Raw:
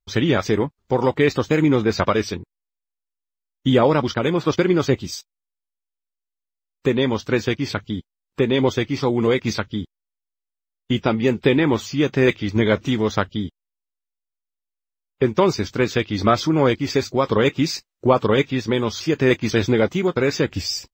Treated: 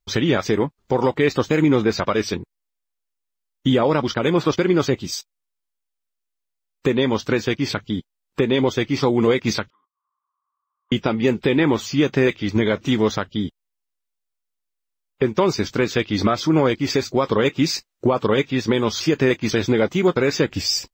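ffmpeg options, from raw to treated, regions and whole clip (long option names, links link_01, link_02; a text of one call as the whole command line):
ffmpeg -i in.wav -filter_complex "[0:a]asettb=1/sr,asplit=3[link_01][link_02][link_03];[link_01]atrim=end=9.704[link_04];[link_02]atrim=start=9.7:end=10.92,asetpts=PTS-STARTPTS,afade=type=in:duration=0.004:curve=qsin,afade=type=out:start_time=1.216:duration=0.004:curve=qsin,asuperpass=centerf=1100:order=4:qfactor=7.2,acompressor=mode=upward:threshold=-59dB:ratio=2.5:attack=3.2:release=140:knee=2.83:detection=peak[link_05];[link_03]atrim=start=10.916[link_06];[link_04][link_05]acrossfade=duration=0.004:curve1=hsin:curve2=qsin[link_07];[link_07][link_06]acrossfade=duration=0.004:curve1=qsin:curve2=hsin,equalizer=frequency=75:width_type=o:width=1.2:gain=-5.5,alimiter=limit=-12.5dB:level=0:latency=1:release=327,volume=5dB" out.wav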